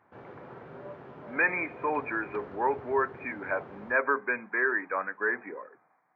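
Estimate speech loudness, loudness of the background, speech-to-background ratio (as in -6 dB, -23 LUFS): -30.0 LUFS, -46.5 LUFS, 16.5 dB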